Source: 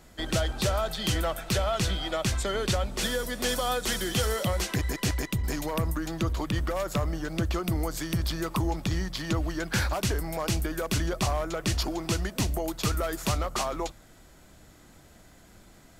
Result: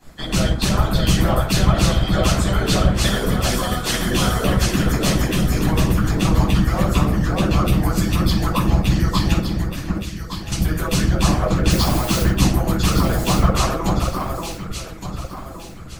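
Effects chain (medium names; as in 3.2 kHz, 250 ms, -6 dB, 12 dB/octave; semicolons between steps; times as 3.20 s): 9.33–10.52 s: amplifier tone stack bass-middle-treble 6-0-2; 11.70–12.23 s: word length cut 6-bit, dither triangular; echo whose repeats swap between lows and highs 583 ms, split 1.8 kHz, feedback 58%, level -2.5 dB; simulated room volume 670 m³, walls furnished, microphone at 8.8 m; harmonic-percussive split harmonic -16 dB; trim +2 dB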